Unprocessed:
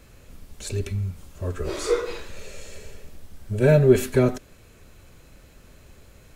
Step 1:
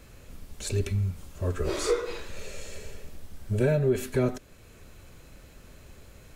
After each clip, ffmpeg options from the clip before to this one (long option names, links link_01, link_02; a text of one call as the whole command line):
ffmpeg -i in.wav -af "alimiter=limit=-14.5dB:level=0:latency=1:release=484" out.wav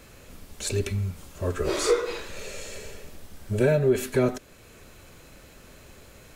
ffmpeg -i in.wav -af "lowshelf=frequency=150:gain=-8,volume=4.5dB" out.wav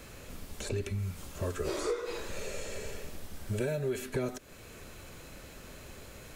ffmpeg -i in.wav -filter_complex "[0:a]acrossover=split=1100|2600|5200[link_01][link_02][link_03][link_04];[link_01]acompressor=threshold=-33dB:ratio=4[link_05];[link_02]acompressor=threshold=-50dB:ratio=4[link_06];[link_03]acompressor=threshold=-55dB:ratio=4[link_07];[link_04]acompressor=threshold=-49dB:ratio=4[link_08];[link_05][link_06][link_07][link_08]amix=inputs=4:normalize=0,volume=1dB" out.wav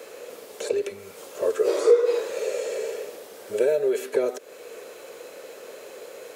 ffmpeg -i in.wav -af "highpass=frequency=470:width_type=q:width=4.9,volume=4dB" out.wav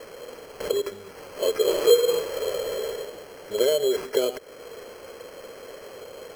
ffmpeg -i in.wav -af "acrusher=samples=12:mix=1:aa=0.000001" out.wav